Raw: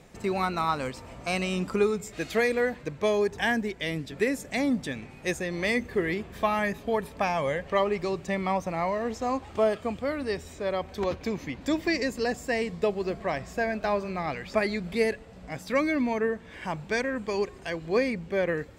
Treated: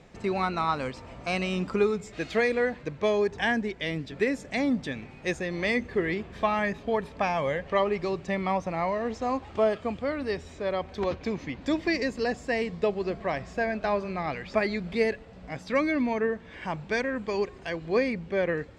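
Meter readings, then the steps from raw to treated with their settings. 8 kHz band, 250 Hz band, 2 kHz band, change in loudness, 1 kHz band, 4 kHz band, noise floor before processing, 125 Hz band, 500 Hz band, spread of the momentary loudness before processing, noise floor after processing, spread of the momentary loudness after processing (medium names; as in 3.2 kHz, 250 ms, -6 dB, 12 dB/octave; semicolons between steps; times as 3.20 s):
no reading, 0.0 dB, 0.0 dB, 0.0 dB, 0.0 dB, -1.0 dB, -47 dBFS, 0.0 dB, 0.0 dB, 6 LU, -47 dBFS, 6 LU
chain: low-pass 5.4 kHz 12 dB/octave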